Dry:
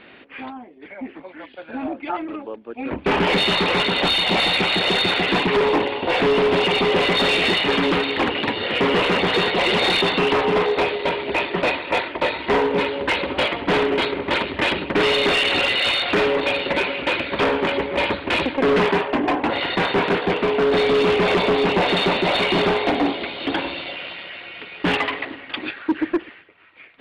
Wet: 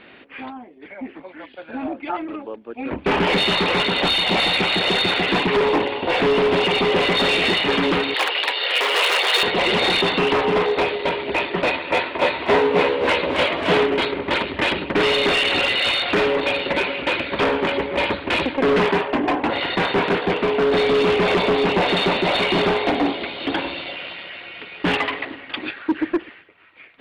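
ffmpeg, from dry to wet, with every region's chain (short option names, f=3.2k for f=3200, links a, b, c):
-filter_complex "[0:a]asettb=1/sr,asplit=3[a][b][c];[a]atrim=end=8.144[d];[b]atrim=start=8.14:end=9.43,asetpts=PTS-STARTPTS,afade=t=in:d=0.004:c=qsin,afade=t=out:st=1.286:d=0.004:c=qsin,highpass=f=430:w=0.5412,highpass=f=430:w=1.3066,aemphasis=mode=production:type=riaa[e];[c]atrim=start=9.426[f];[d][e]acrossfade=d=0.004:c1=hsin:c2=qsin[g];[g][f]acrossfade=d=0.004:c1=qsin:c2=hsin,asettb=1/sr,asplit=3[h][i][j];[h]atrim=end=11.724[k];[i]atrim=start=11.72:end=13.86,asetpts=PTS-STARTPTS,afade=t=in:d=0.004:c=qsin,afade=t=out:st=2.136:d=0.004:c=qsin,highpass=53,asplit=2[l][m];[m]adelay=12,volume=-8dB[n];[l][n]amix=inputs=2:normalize=0,atrim=end_sample=94374,asplit=8[o][p][q][r][s][t][u][v];[p]adelay=269,afreqshift=66,volume=-6dB[w];[q]adelay=538,afreqshift=132,volume=-11.4dB[x];[r]adelay=807,afreqshift=198,volume=-16.7dB[y];[s]adelay=1076,afreqshift=264,volume=-22.1dB[z];[t]adelay=1345,afreqshift=330,volume=-27.4dB[aa];[u]adelay=1614,afreqshift=396,volume=-32.8dB[ab];[v]adelay=1883,afreqshift=462,volume=-38.1dB[ac];[o][w][x][y][z][aa][ab][ac]amix=inputs=8:normalize=0,atrim=end_sample=94374[ad];[j]atrim=start=13.856[ae];[k][ad]acrossfade=d=0.004:c1=hsin:c2=qsin[af];[af][ae]acrossfade=d=0.004:c1=qsin:c2=hsin"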